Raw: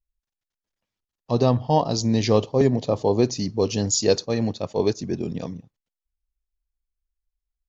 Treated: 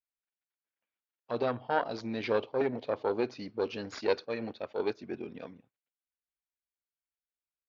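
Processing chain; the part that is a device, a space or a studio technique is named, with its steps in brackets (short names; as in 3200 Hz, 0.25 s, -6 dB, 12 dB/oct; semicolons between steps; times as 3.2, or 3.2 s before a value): guitar amplifier (tube stage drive 10 dB, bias 0.75; tone controls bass -8 dB, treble -1 dB; speaker cabinet 97–3700 Hz, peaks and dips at 99 Hz -5 dB, 160 Hz -9 dB, 1500 Hz +7 dB, 2300 Hz +6 dB); gain -4 dB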